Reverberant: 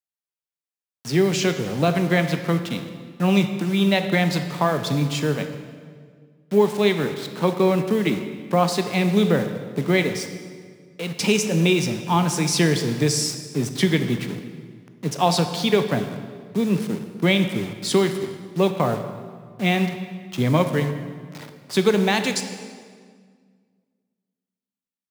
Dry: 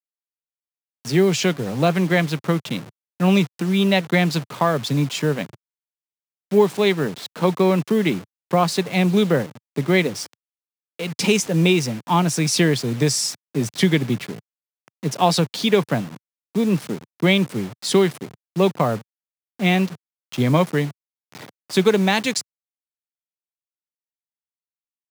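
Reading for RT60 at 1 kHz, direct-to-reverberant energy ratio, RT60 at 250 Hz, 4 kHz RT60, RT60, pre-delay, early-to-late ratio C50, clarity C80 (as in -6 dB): 1.7 s, 7.5 dB, 2.2 s, 1.4 s, 1.8 s, 18 ms, 9.0 dB, 10.0 dB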